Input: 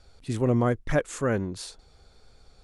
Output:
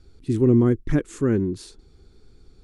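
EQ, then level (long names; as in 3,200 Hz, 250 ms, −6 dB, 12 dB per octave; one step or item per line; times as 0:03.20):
low shelf with overshoot 460 Hz +8.5 dB, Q 3
−4.0 dB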